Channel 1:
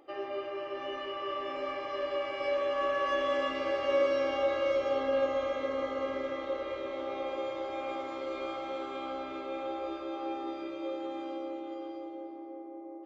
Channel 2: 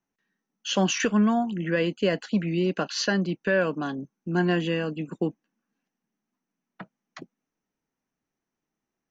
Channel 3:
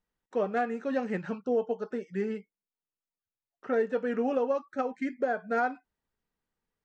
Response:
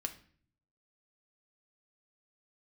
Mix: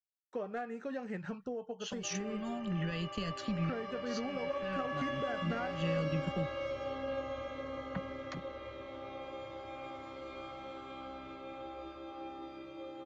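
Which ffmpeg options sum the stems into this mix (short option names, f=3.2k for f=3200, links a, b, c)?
-filter_complex "[0:a]highpass=82,adelay=1950,volume=-6.5dB[a];[1:a]acrossover=split=120|3000[b][c][d];[c]acompressor=threshold=-35dB:ratio=6[e];[b][e][d]amix=inputs=3:normalize=0,adelay=1150,volume=-2.5dB[f];[2:a]volume=-2.5dB,asplit=2[g][h];[h]apad=whole_len=452062[i];[f][i]sidechaincompress=threshold=-45dB:ratio=4:attack=16:release=149[j];[j][g]amix=inputs=2:normalize=0,agate=range=-33dB:threshold=-51dB:ratio=3:detection=peak,acompressor=threshold=-35dB:ratio=6,volume=0dB[k];[a][k]amix=inputs=2:normalize=0,asubboost=boost=8.5:cutoff=130"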